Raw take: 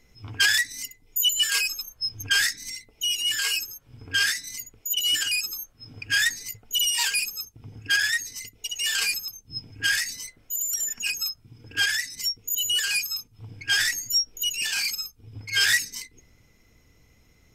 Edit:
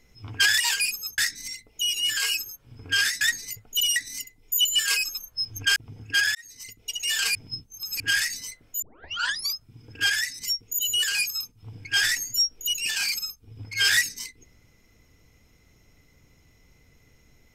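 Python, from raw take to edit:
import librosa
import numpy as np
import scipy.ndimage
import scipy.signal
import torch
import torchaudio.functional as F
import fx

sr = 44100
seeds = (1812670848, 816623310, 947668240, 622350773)

y = fx.edit(x, sr, fx.swap(start_s=0.6, length_s=1.8, other_s=6.94, other_length_s=0.58),
    fx.cut(start_s=4.43, length_s=1.76),
    fx.fade_in_span(start_s=8.11, length_s=0.47),
    fx.reverse_span(start_s=9.11, length_s=0.65),
    fx.tape_start(start_s=10.58, length_s=0.73), tone=tone)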